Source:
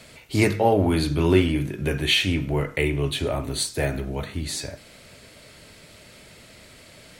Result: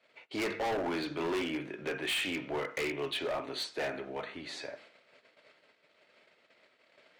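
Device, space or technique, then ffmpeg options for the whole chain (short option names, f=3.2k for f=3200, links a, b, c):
walkie-talkie: -filter_complex "[0:a]asettb=1/sr,asplit=3[a][b][c];[a]atrim=end=2.224[d];[b]atrim=start=2.22:end=3.7,asetpts=PTS-STARTPTS,afade=t=in:d=0.004:c=qsin,afade=t=out:st=1.476:d=0.004:c=qsin,equalizer=f=4.5k:w=0.68:g=3[e];[c]atrim=start=3.696[f];[d][e]acrossfade=d=0.004:c1=hsin:c2=qsin[g];[g][f]acrossfade=d=0.004:c1=qsin:c2=hsin,highpass=440,lowpass=2.9k,asoftclip=type=hard:threshold=-27dB,agate=range=-18dB:threshold=-50dB:ratio=16:detection=peak,volume=-3dB"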